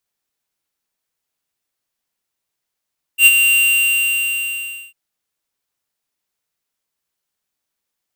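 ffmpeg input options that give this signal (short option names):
-f lavfi -i "aevalsrc='0.501*(2*lt(mod(2770*t,1),0.5)-1)':d=1.75:s=44100,afade=t=in:d=0.081,afade=t=out:st=0.081:d=0.038:silence=0.447,afade=t=out:st=0.35:d=1.4"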